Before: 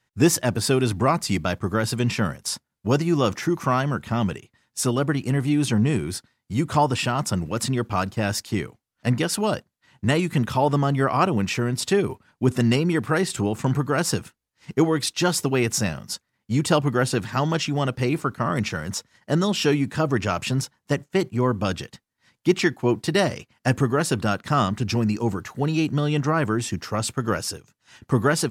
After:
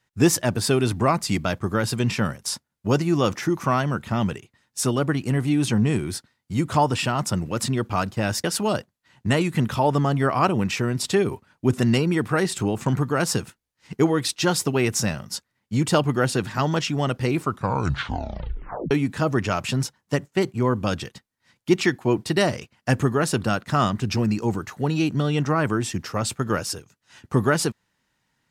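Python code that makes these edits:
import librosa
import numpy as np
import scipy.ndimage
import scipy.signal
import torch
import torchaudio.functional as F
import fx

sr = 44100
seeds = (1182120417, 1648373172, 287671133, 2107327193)

y = fx.edit(x, sr, fx.cut(start_s=8.44, length_s=0.78),
    fx.tape_stop(start_s=18.21, length_s=1.48), tone=tone)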